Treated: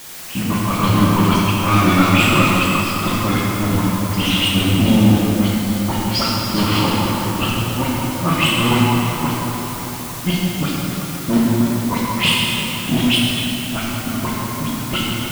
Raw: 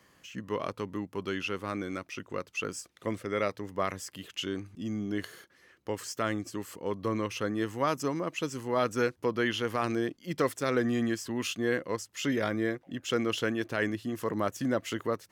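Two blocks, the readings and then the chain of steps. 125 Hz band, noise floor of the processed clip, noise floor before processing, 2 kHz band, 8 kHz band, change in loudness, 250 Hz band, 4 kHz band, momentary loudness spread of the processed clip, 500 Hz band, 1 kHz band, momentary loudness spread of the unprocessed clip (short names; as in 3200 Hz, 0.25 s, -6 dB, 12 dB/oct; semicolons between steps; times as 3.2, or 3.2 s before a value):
+21.0 dB, -27 dBFS, -64 dBFS, +14.0 dB, +16.5 dB, +15.0 dB, +16.0 dB, +20.0 dB, 9 LU, +5.5 dB, +15.5 dB, 8 LU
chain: elliptic low-pass 5900 Hz; dynamic EQ 720 Hz, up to -6 dB, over -45 dBFS, Q 1.5; level quantiser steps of 11 dB; fixed phaser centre 1700 Hz, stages 6; AGC gain up to 15 dB; flipped gate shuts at -18 dBFS, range -38 dB; sample leveller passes 5; dispersion highs, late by 89 ms, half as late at 2400 Hz; added noise white -39 dBFS; plate-style reverb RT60 4.1 s, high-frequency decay 0.6×, DRR -6.5 dB; gain +1 dB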